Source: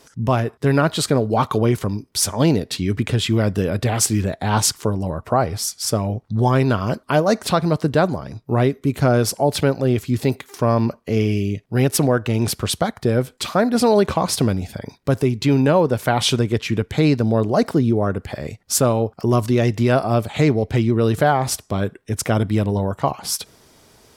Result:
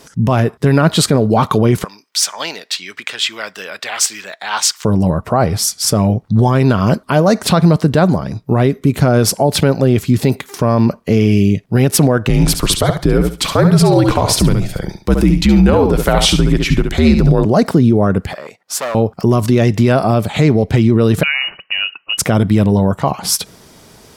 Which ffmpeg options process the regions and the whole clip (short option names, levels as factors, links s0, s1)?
-filter_complex "[0:a]asettb=1/sr,asplit=3[s0][s1][s2];[s0]atrim=end=1.844[s3];[s1]atrim=start=1.84:end=4.85,asetpts=PTS-STARTPTS,afade=t=in:d=0.004:c=qsin,afade=t=out:st=3.006:d=0.004:c=qsin,highpass=1300,equalizer=f=11000:t=o:w=0.58:g=-11[s4];[s2]atrim=start=4.846[s5];[s3][s4]acrossfade=d=0.004:c1=hsin:c2=qsin[s6];[s6][s5]acrossfade=d=0.004:c1=qsin:c2=hsin,asettb=1/sr,asplit=3[s7][s8][s9];[s7]atrim=end=12.294[s10];[s8]atrim=start=12.29:end=17.45,asetpts=PTS-STARTPTS,afade=t=in:d=0.004:c=qsin,afade=t=out:st=5.156:d=0.004:c=qsin,afreqshift=-75,aecho=1:1:69|138|207:0.398|0.0796|0.0159,atrim=end_sample=227556[s11];[s9]atrim=start=17.446[s12];[s10][s11]acrossfade=d=0.004:c1=hsin:c2=qsin[s13];[s13][s12]acrossfade=d=0.004:c1=qsin:c2=hsin,asettb=1/sr,asplit=3[s14][s15][s16];[s14]atrim=end=18.334[s17];[s15]atrim=start=18.33:end=18.95,asetpts=PTS-STARTPTS,afade=t=in:d=0.004:c=qsin,afade=t=out:st=0.616:d=0.004:c=qsin,highshelf=f=2200:g=-10,volume=11.2,asoftclip=hard,volume=0.0891,highpass=660[s18];[s16]atrim=start=18.946[s19];[s17][s18]acrossfade=d=0.004:c1=hsin:c2=qsin[s20];[s20][s19]acrossfade=d=0.004:c1=qsin:c2=hsin,asettb=1/sr,asplit=3[s21][s22][s23];[s21]atrim=end=21.234[s24];[s22]atrim=start=21.23:end=22.18,asetpts=PTS-STARTPTS,afade=t=in:d=0.004:c=qsin,afade=t=out:st=0.946:d=0.004:c=qsin,acompressor=threshold=0.0631:ratio=2.5:attack=3.2:release=140:knee=1:detection=peak,lowpass=f=2600:t=q:w=0.5098,lowpass=f=2600:t=q:w=0.6013,lowpass=f=2600:t=q:w=0.9,lowpass=f=2600:t=q:w=2.563,afreqshift=-3000[s25];[s23]atrim=start=22.176[s26];[s24][s25]acrossfade=d=0.004:c1=hsin:c2=qsin[s27];[s27][s26]acrossfade=d=0.004:c1=qsin:c2=hsin,equalizer=f=180:w=2.6:g=6,alimiter=level_in=2.82:limit=0.891:release=50:level=0:latency=1,volume=0.891"